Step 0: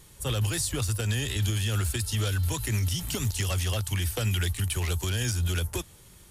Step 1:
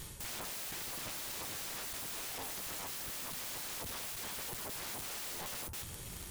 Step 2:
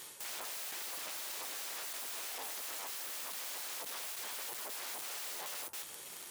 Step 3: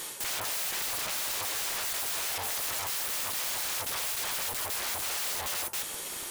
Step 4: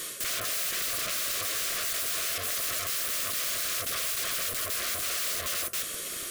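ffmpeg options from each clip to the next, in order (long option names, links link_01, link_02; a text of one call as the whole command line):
ffmpeg -i in.wav -af "areverse,acompressor=threshold=-35dB:ratio=12,areverse,aeval=exprs='(mod(158*val(0)+1,2)-1)/158':channel_layout=same,volume=6.5dB" out.wav
ffmpeg -i in.wav -af "highpass=450" out.wav
ffmpeg -i in.wav -af "aeval=exprs='0.0266*sin(PI/2*2.51*val(0)/0.0266)':channel_layout=same,aeval=exprs='0.0266*(cos(1*acos(clip(val(0)/0.0266,-1,1)))-cos(1*PI/2))+0.00266*(cos(3*acos(clip(val(0)/0.0266,-1,1)))-cos(3*PI/2))':channel_layout=same,volume=1.5dB" out.wav
ffmpeg -i in.wav -af "asuperstop=centerf=870:order=12:qfactor=2.7,volume=2dB" out.wav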